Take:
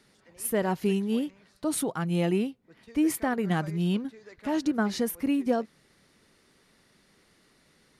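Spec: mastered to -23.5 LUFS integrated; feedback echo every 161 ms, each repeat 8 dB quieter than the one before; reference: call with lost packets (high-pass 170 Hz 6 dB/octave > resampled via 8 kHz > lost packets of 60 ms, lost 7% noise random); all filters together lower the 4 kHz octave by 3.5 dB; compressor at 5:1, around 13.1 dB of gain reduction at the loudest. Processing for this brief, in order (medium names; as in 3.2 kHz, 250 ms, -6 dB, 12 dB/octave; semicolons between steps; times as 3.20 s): peaking EQ 4 kHz -5 dB; compression 5:1, threshold -36 dBFS; high-pass 170 Hz 6 dB/octave; feedback delay 161 ms, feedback 40%, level -8 dB; resampled via 8 kHz; lost packets of 60 ms, lost 7% noise random; trim +17.5 dB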